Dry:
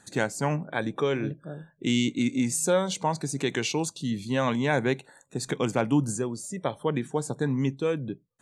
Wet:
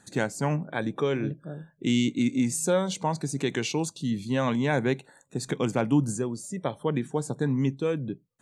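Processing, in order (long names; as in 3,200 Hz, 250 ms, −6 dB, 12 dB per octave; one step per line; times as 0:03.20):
parametric band 180 Hz +3.5 dB 2.3 octaves
level −2 dB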